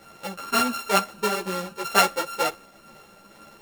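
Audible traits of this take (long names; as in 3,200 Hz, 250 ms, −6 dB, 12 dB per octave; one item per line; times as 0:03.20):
a buzz of ramps at a fixed pitch in blocks of 32 samples
tremolo triangle 2.1 Hz, depth 35%
a shimmering, thickened sound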